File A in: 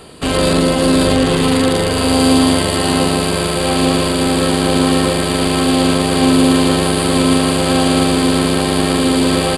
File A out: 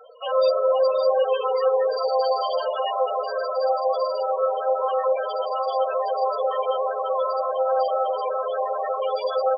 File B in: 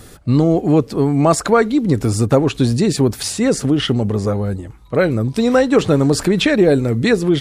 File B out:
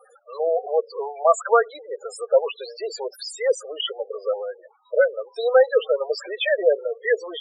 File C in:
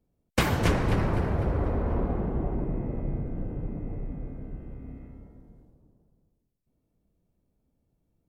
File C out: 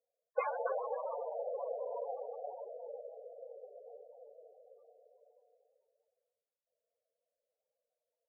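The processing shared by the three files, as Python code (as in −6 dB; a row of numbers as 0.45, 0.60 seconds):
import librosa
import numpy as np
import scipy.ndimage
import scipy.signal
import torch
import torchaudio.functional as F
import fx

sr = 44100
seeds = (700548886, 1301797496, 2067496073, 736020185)

y = scipy.signal.sosfilt(scipy.signal.ellip(4, 1.0, 50, 490.0, 'highpass', fs=sr, output='sos'), x)
y = fx.spec_topn(y, sr, count=8)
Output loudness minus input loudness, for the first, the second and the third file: −9.5, −7.0, −11.5 LU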